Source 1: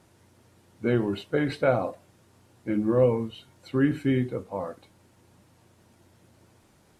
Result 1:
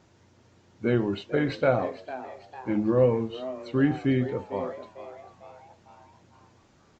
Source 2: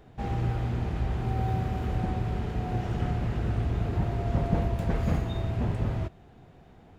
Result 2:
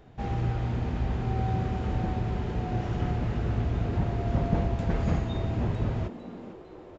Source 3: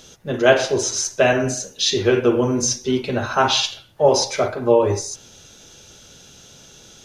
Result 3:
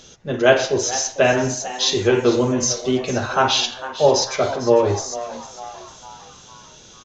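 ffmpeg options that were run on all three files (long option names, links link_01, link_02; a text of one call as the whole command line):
ffmpeg -i in.wav -filter_complex "[0:a]aresample=16000,aresample=44100,asplit=6[link_01][link_02][link_03][link_04][link_05][link_06];[link_02]adelay=451,afreqshift=130,volume=-14.5dB[link_07];[link_03]adelay=902,afreqshift=260,volume=-20.5dB[link_08];[link_04]adelay=1353,afreqshift=390,volume=-26.5dB[link_09];[link_05]adelay=1804,afreqshift=520,volume=-32.6dB[link_10];[link_06]adelay=2255,afreqshift=650,volume=-38.6dB[link_11];[link_01][link_07][link_08][link_09][link_10][link_11]amix=inputs=6:normalize=0" out.wav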